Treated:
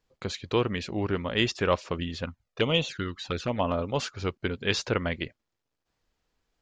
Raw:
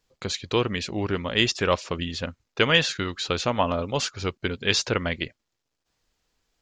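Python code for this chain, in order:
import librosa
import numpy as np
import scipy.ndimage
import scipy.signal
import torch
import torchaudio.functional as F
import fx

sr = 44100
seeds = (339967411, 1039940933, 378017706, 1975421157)

y = fx.high_shelf(x, sr, hz=3300.0, db=-8.5)
y = fx.env_flanger(y, sr, rest_ms=2.0, full_db=-19.5, at=(2.24, 3.63), fade=0.02)
y = F.gain(torch.from_numpy(y), -1.5).numpy()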